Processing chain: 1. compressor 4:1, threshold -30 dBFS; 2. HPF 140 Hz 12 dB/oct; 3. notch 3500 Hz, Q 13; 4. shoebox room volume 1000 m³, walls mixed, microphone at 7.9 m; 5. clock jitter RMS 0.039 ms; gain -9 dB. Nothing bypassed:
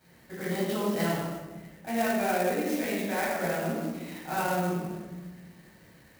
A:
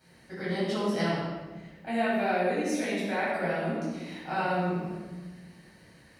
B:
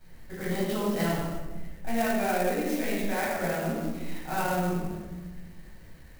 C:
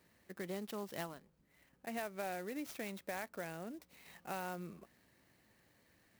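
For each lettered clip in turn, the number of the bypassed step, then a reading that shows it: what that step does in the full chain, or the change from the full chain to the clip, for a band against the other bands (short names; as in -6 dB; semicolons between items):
5, 8 kHz band -6.0 dB; 2, 125 Hz band +1.5 dB; 4, momentary loudness spread change -3 LU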